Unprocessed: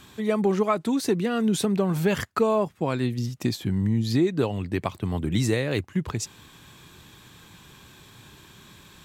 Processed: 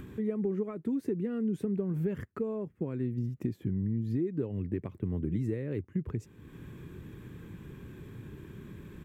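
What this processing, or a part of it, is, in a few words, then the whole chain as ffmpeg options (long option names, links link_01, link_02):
upward and downward compression: -af "acompressor=mode=upward:threshold=-31dB:ratio=2.5,acompressor=threshold=-27dB:ratio=4,firequalizer=gain_entry='entry(420,0);entry(710,-16);entry(1900,-11);entry(4000,-27);entry(14000,-16)':delay=0.05:min_phase=1,volume=-1.5dB"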